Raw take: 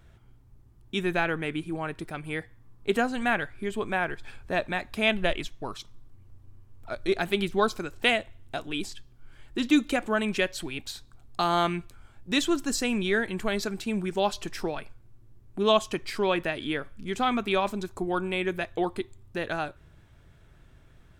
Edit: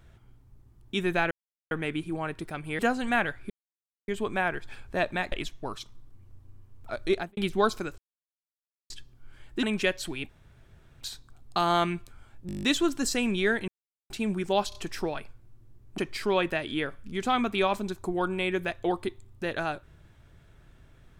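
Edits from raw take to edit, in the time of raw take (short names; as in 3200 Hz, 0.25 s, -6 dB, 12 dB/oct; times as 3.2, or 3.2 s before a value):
1.31 insert silence 0.40 s
2.39–2.93 cut
3.64 insert silence 0.58 s
4.88–5.31 cut
7.11–7.36 studio fade out
7.97–8.89 mute
9.62–10.18 cut
10.84 insert room tone 0.72 s
12.3 stutter 0.02 s, 9 plays
13.35–13.77 mute
14.36 stutter 0.03 s, 3 plays
15.59–15.91 cut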